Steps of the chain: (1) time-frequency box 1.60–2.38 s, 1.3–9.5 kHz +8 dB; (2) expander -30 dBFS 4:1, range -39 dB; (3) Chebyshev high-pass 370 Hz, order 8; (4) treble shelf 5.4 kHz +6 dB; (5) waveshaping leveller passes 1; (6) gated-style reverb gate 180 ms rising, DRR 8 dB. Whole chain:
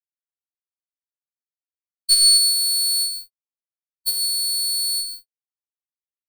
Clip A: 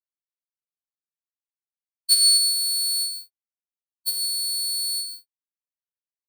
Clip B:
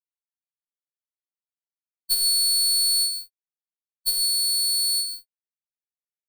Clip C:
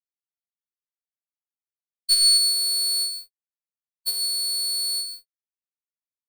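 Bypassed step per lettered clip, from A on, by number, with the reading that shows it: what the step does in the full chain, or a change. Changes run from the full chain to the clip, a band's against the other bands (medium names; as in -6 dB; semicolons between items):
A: 5, crest factor change +3.0 dB; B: 1, momentary loudness spread change -5 LU; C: 4, crest factor change -1.5 dB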